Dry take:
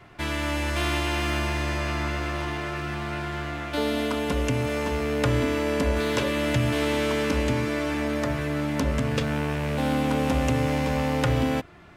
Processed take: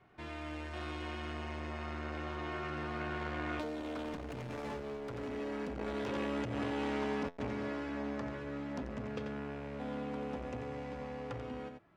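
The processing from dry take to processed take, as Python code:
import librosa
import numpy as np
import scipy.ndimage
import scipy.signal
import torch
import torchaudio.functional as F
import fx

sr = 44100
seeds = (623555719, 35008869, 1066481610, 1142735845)

p1 = fx.doppler_pass(x, sr, speed_mps=13, closest_m=3.7, pass_at_s=4.51)
p2 = scipy.signal.sosfilt(scipy.signal.butter(2, 6800.0, 'lowpass', fs=sr, output='sos'), p1)
p3 = fx.low_shelf(p2, sr, hz=120.0, db=-7.0)
p4 = p3 + fx.echo_single(p3, sr, ms=89, db=-7.0, dry=0)
p5 = np.clip(10.0 ** (34.0 / 20.0) * p4, -1.0, 1.0) / 10.0 ** (34.0 / 20.0)
p6 = fx.high_shelf(p5, sr, hz=2000.0, db=-9.5)
p7 = fx.over_compress(p6, sr, threshold_db=-44.0, ratio=-1.0)
p8 = fx.buffer_glitch(p7, sr, at_s=(7.27,), block=512, repeats=8)
p9 = fx.transformer_sat(p8, sr, knee_hz=580.0)
y = F.gain(torch.from_numpy(p9), 9.0).numpy()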